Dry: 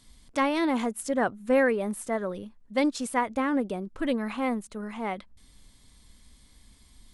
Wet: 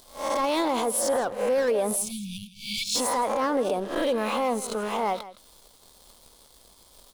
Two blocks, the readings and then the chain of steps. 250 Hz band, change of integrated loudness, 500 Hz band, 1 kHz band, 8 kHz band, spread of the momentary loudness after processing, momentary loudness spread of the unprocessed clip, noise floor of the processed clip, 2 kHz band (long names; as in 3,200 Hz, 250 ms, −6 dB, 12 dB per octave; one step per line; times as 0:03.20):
−3.5 dB, +2.0 dB, +3.0 dB, +3.5 dB, +11.5 dB, 8 LU, 10 LU, −56 dBFS, −2.5 dB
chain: peak hold with a rise ahead of every peak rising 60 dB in 0.46 s
tilt shelving filter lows −8.5 dB, about 890 Hz
leveller curve on the samples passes 3
octave-band graphic EQ 500/1,000/2,000/8,000 Hz +9/+5/−11/−4 dB
time-frequency box erased 0:01.96–0:02.95, 230–2,200 Hz
in parallel at +0.5 dB: downward compressor, threshold −31 dBFS, peak gain reduction 22 dB
on the sum: brickwall limiter −11 dBFS, peak gain reduction 9.5 dB
on a send: single-tap delay 163 ms −16 dB
on the sum: level −7 dB